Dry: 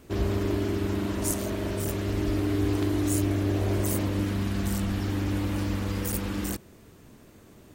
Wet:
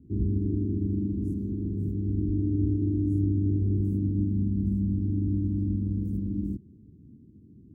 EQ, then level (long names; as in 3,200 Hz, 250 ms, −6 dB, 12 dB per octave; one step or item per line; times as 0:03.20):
high-pass filter 65 Hz
inverse Chebyshev low-pass filter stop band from 590 Hz, stop band 40 dB
+3.0 dB